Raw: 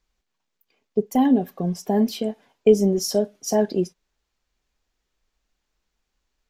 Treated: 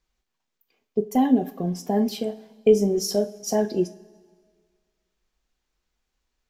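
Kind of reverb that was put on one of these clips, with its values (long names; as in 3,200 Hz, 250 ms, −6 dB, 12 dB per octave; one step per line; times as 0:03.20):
coupled-rooms reverb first 0.31 s, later 1.8 s, from −18 dB, DRR 9.5 dB
level −2 dB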